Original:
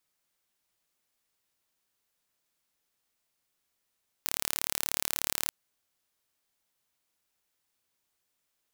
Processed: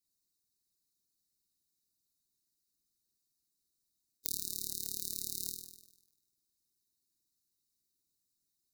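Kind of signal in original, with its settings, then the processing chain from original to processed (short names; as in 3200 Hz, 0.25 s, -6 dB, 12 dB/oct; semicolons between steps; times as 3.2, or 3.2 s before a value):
pulse train 36.6/s, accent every 0, -2.5 dBFS 1.23 s
brick-wall FIR band-stop 430–3600 Hz; flutter echo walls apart 8.5 m, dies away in 0.96 s; harmonic-percussive split harmonic -18 dB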